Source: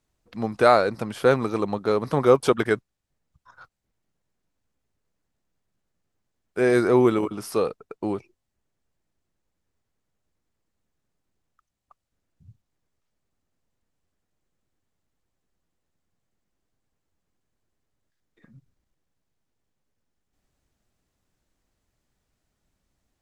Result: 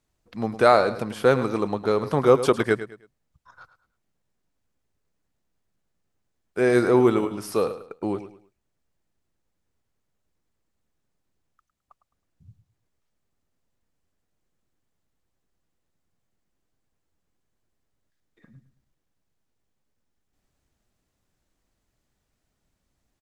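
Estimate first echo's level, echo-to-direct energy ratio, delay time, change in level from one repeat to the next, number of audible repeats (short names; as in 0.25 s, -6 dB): -13.0 dB, -12.5 dB, 0.106 s, -10.5 dB, 3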